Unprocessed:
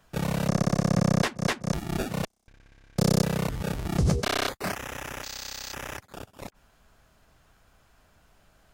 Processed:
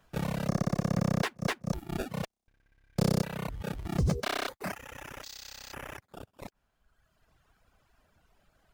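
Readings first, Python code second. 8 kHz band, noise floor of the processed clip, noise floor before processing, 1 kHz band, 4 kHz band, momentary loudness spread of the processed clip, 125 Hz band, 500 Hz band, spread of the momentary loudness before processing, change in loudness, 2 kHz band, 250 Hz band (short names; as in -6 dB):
-8.5 dB, -76 dBFS, -63 dBFS, -5.0 dB, -6.5 dB, 15 LU, -5.0 dB, -5.5 dB, 15 LU, -5.0 dB, -5.0 dB, -5.0 dB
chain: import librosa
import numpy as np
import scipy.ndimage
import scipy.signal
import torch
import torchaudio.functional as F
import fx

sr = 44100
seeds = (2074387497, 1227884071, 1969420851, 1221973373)

p1 = fx.dereverb_blind(x, sr, rt60_s=1.6)
p2 = fx.sample_hold(p1, sr, seeds[0], rate_hz=12000.0, jitter_pct=0)
p3 = p1 + F.gain(torch.from_numpy(p2), -8.0).numpy()
y = F.gain(torch.from_numpy(p3), -6.0).numpy()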